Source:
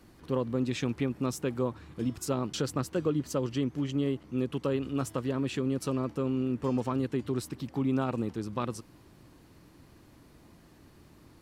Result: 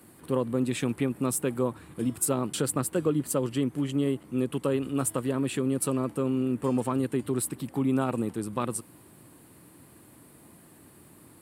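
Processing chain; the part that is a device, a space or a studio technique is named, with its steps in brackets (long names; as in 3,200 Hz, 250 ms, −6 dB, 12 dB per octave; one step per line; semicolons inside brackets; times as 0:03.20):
budget condenser microphone (high-pass filter 110 Hz 12 dB per octave; high shelf with overshoot 7,300 Hz +8 dB, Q 3)
level +3 dB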